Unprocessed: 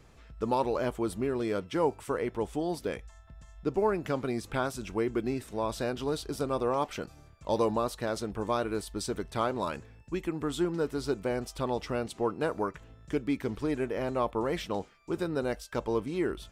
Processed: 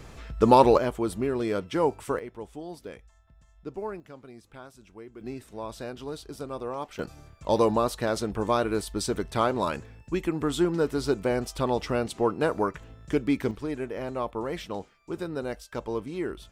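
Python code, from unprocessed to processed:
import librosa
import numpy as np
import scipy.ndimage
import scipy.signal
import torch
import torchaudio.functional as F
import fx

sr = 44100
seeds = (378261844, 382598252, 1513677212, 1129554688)

y = fx.gain(x, sr, db=fx.steps((0.0, 11.5), (0.78, 3.0), (2.19, -7.5), (4.0, -15.0), (5.21, -5.0), (6.99, 5.0), (13.51, -1.5)))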